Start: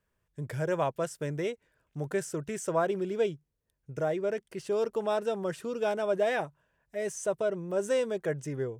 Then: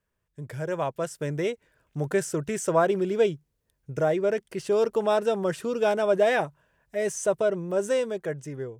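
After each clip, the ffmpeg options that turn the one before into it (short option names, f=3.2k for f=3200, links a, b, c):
-af "dynaudnorm=f=260:g=9:m=7.5dB,volume=-1.5dB"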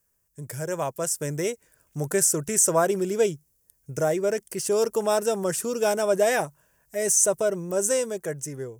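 -af "aexciter=amount=7:drive=3.9:freq=5.3k"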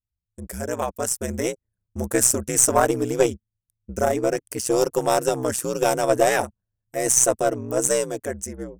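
-af "anlmdn=0.0251,aeval=exprs='val(0)*sin(2*PI*63*n/s)':c=same,aeval=exprs='0.422*(cos(1*acos(clip(val(0)/0.422,-1,1)))-cos(1*PI/2))+0.0211*(cos(4*acos(clip(val(0)/0.422,-1,1)))-cos(4*PI/2))+0.0133*(cos(7*acos(clip(val(0)/0.422,-1,1)))-cos(7*PI/2))':c=same,volume=6.5dB"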